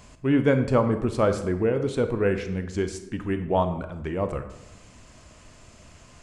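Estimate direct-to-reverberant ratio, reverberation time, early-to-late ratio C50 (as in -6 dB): 8.5 dB, 0.90 s, 10.0 dB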